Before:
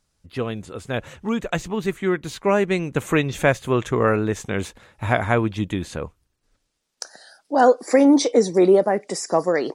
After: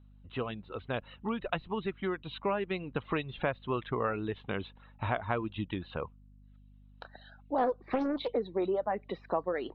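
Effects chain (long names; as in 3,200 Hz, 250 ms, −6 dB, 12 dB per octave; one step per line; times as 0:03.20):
reverb reduction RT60 0.75 s
downward compressor 3 to 1, threshold −25 dBFS, peak gain reduction 11 dB
Chebyshev low-pass with heavy ripple 4,000 Hz, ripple 6 dB
mains hum 50 Hz, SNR 22 dB
0:07.58–0:08.34: highs frequency-modulated by the lows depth 0.61 ms
level −1 dB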